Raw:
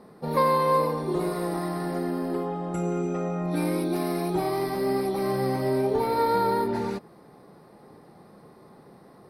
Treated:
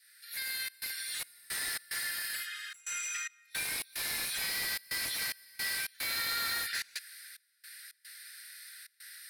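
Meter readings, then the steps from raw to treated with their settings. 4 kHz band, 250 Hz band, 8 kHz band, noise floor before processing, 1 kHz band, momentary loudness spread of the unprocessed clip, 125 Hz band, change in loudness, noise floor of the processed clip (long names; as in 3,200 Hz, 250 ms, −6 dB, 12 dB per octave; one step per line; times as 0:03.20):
+7.5 dB, −31.5 dB, +10.0 dB, −52 dBFS, −20.5 dB, 7 LU, −29.0 dB, −8.0 dB, −71 dBFS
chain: fade in at the beginning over 1.82 s
Butterworth high-pass 1,500 Hz 96 dB per octave
high-shelf EQ 4,900 Hz +11 dB
in parallel at −3 dB: downward compressor, threshold −49 dBFS, peak gain reduction 16.5 dB
on the sum: brickwall limiter −26.5 dBFS, peak gain reduction 8 dB
upward compression, threshold −57 dBFS
soft clipping −35.5 dBFS, distortion −13 dB
gate pattern "xxxxx.xxx..xx.x" 110 BPM −24 dB
slew-rate limiting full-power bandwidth 56 Hz
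level +8.5 dB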